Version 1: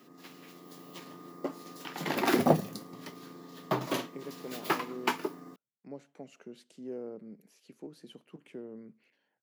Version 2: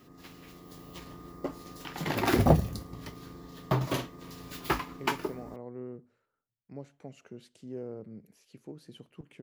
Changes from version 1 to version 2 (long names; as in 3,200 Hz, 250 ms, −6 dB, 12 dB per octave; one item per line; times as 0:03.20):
speech: entry +0.85 s
master: remove high-pass filter 180 Hz 24 dB per octave